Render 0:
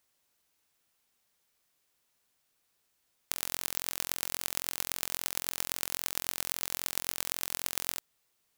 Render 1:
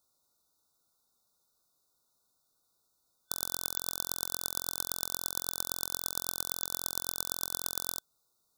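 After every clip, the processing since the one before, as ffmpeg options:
-af "afftfilt=real='re*(1-between(b*sr/4096,1500,3500))':imag='im*(1-between(b*sr/4096,1500,3500))':win_size=4096:overlap=0.75"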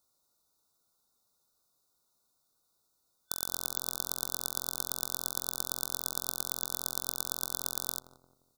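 -filter_complex "[0:a]asplit=2[s0][s1];[s1]adelay=175,lowpass=f=850:p=1,volume=0.316,asplit=2[s2][s3];[s3]adelay=175,lowpass=f=850:p=1,volume=0.46,asplit=2[s4][s5];[s5]adelay=175,lowpass=f=850:p=1,volume=0.46,asplit=2[s6][s7];[s7]adelay=175,lowpass=f=850:p=1,volume=0.46,asplit=2[s8][s9];[s9]adelay=175,lowpass=f=850:p=1,volume=0.46[s10];[s0][s2][s4][s6][s8][s10]amix=inputs=6:normalize=0"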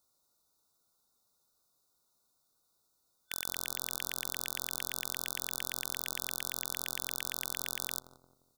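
-af "aeval=exprs='(mod(2*val(0)+1,2)-1)/2':c=same"

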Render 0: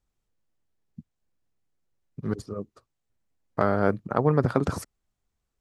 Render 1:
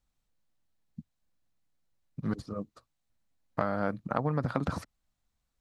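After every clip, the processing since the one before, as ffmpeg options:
-filter_complex "[0:a]acrossover=split=4100[s0][s1];[s1]acompressor=threshold=0.002:ratio=4:attack=1:release=60[s2];[s0][s2]amix=inputs=2:normalize=0,equalizer=f=100:t=o:w=0.33:g=-5,equalizer=f=400:t=o:w=0.33:g=-11,equalizer=f=4000:t=o:w=0.33:g=4,acompressor=threshold=0.0562:ratio=5"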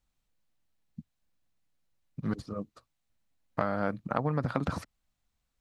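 -af "equalizer=f=2600:w=1.5:g=2.5"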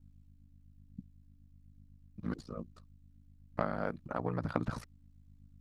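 -af "aeval=exprs='val(0)+0.00224*(sin(2*PI*50*n/s)+sin(2*PI*2*50*n/s)/2+sin(2*PI*3*50*n/s)/3+sin(2*PI*4*50*n/s)/4+sin(2*PI*5*50*n/s)/5)':c=same,aphaser=in_gain=1:out_gain=1:delay=3.9:decay=0.24:speed=1.1:type=triangular,aeval=exprs='val(0)*sin(2*PI*29*n/s)':c=same,volume=0.75"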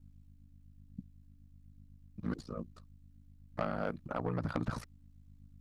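-af "asoftclip=type=tanh:threshold=0.0631,volume=1.19"

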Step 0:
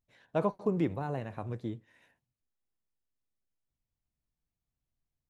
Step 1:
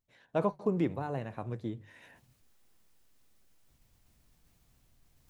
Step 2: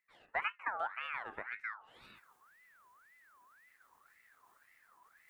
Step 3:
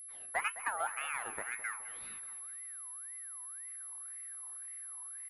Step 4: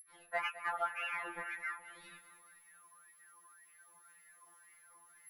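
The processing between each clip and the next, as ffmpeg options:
-af "bandreject=f=50:t=h:w=6,bandreject=f=100:t=h:w=6,bandreject=f=150:t=h:w=6,areverse,acompressor=mode=upward:threshold=0.00447:ratio=2.5,areverse"
-af "equalizer=f=250:t=o:w=0.67:g=8,equalizer=f=630:t=o:w=0.67:g=9,equalizer=f=4000:t=o:w=0.67:g=-10,acompressor=threshold=0.00251:ratio=1.5,aeval=exprs='val(0)*sin(2*PI*1500*n/s+1500*0.35/1.9*sin(2*PI*1.9*n/s))':c=same,volume=1.12"
-filter_complex "[0:a]aeval=exprs='val(0)+0.00398*sin(2*PI*11000*n/s)':c=same,asplit=2[s0][s1];[s1]asoftclip=type=tanh:threshold=0.0211,volume=0.266[s2];[s0][s2]amix=inputs=2:normalize=0,aecho=1:1:210|420|630|840|1050:0.178|0.0996|0.0558|0.0312|0.0175"
-af "afftfilt=real='re*2.83*eq(mod(b,8),0)':imag='im*2.83*eq(mod(b,8),0)':win_size=2048:overlap=0.75,volume=1.19"

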